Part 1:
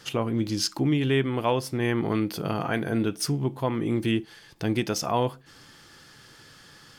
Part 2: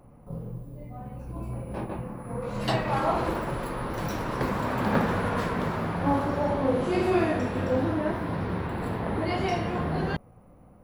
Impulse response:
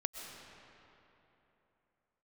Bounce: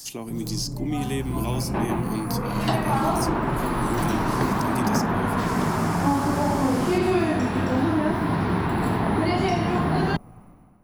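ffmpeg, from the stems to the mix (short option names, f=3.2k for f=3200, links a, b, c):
-filter_complex "[0:a]aexciter=amount=5.3:drive=9.4:freq=4.7k,highpass=200,equalizer=f=1.3k:t=o:w=0.77:g=-13.5,volume=-2dB[a];[1:a]equalizer=f=65:t=o:w=1.5:g=-5.5,dynaudnorm=f=110:g=9:m=14dB,volume=-2dB[b];[a][b]amix=inputs=2:normalize=0,equalizer=f=520:w=3.4:g=-12.5,acrossover=split=290|1100|3800[c][d][e][f];[c]acompressor=threshold=-23dB:ratio=4[g];[d]acompressor=threshold=-23dB:ratio=4[h];[e]acompressor=threshold=-35dB:ratio=4[i];[f]acompressor=threshold=-39dB:ratio=4[j];[g][h][i][j]amix=inputs=4:normalize=0"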